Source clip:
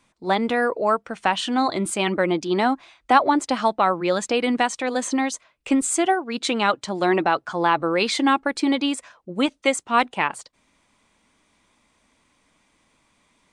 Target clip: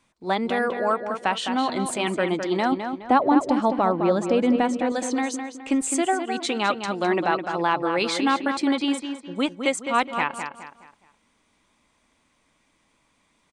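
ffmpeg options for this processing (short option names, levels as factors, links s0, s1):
-filter_complex "[0:a]asettb=1/sr,asplit=3[s0][s1][s2];[s0]atrim=end=2.724[s3];[s1]atrim=start=2.72:end=4.92,asetpts=PTS-STARTPTS,afade=t=in:d=0.004:c=qsin,afade=t=out:st=2.196:d=0.004:c=qsin,tiltshelf=f=840:g=7.5[s4];[s2]atrim=start=4.916[s5];[s3][s4]acrossfade=d=0.004:c1=hsin:c2=qsin[s6];[s6][s5]acrossfade=d=0.004:c1=qsin:c2=hsin,asplit=2[s7][s8];[s8]adelay=209,lowpass=f=4100:p=1,volume=0.447,asplit=2[s9][s10];[s10]adelay=209,lowpass=f=4100:p=1,volume=0.37,asplit=2[s11][s12];[s12]adelay=209,lowpass=f=4100:p=1,volume=0.37,asplit=2[s13][s14];[s14]adelay=209,lowpass=f=4100:p=1,volume=0.37[s15];[s7][s9][s11][s13][s15]amix=inputs=5:normalize=0,volume=0.708"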